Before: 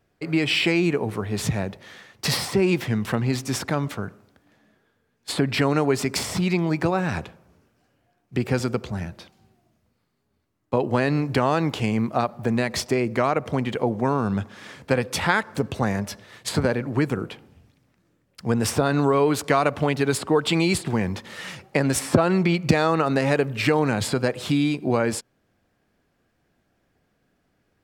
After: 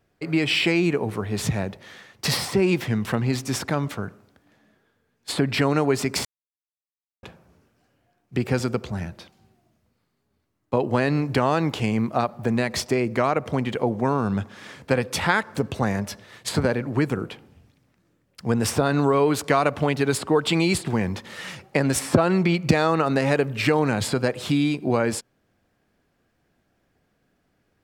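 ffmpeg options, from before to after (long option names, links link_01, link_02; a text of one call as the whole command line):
ffmpeg -i in.wav -filter_complex "[0:a]asplit=3[link_01][link_02][link_03];[link_01]atrim=end=6.25,asetpts=PTS-STARTPTS,afade=type=out:start_time=6.246:duration=0.004:curve=hsin[link_04];[link_02]atrim=start=6.25:end=7.23,asetpts=PTS-STARTPTS,volume=0[link_05];[link_03]atrim=start=7.23,asetpts=PTS-STARTPTS,afade=type=in:duration=0.004:curve=hsin[link_06];[link_04][link_05][link_06]concat=n=3:v=0:a=1" out.wav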